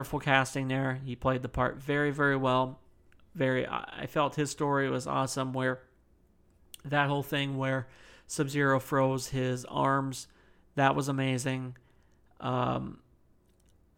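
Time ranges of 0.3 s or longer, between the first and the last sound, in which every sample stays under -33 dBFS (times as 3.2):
2.7–3.39
5.74–6.74
7.82–8.31
10.22–10.77
11.69–12.43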